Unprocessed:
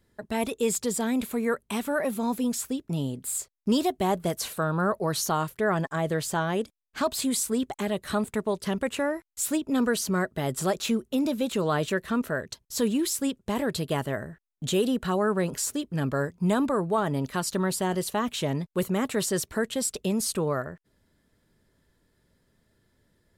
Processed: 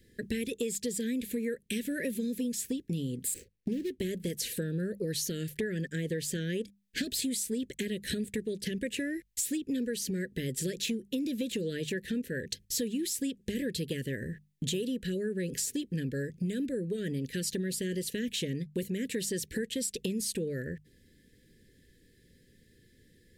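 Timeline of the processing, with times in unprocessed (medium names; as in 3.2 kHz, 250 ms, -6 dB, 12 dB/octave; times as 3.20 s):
3.34–4.00 s: median filter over 25 samples
whole clip: Chebyshev band-stop 510–1700 Hz, order 4; compression 10:1, threshold -37 dBFS; hum notches 50/100/150/200 Hz; trim +7 dB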